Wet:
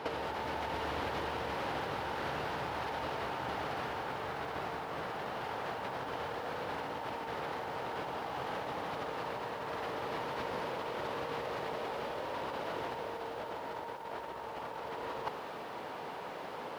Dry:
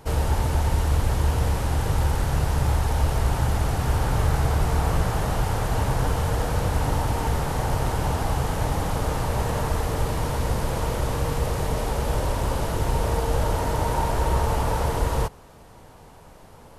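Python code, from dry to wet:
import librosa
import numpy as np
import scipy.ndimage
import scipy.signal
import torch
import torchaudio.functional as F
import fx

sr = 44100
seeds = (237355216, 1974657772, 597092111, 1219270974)

y = scipy.signal.sosfilt(scipy.signal.butter(2, 320.0, 'highpass', fs=sr, output='sos'), x)
y = fx.high_shelf(y, sr, hz=2200.0, db=10.0)
y = fx.over_compress(y, sr, threshold_db=-33.0, ratio=-0.5)
y = fx.air_absorb(y, sr, metres=340.0)
y = fx.echo_crushed(y, sr, ms=95, feedback_pct=80, bits=9, wet_db=-14)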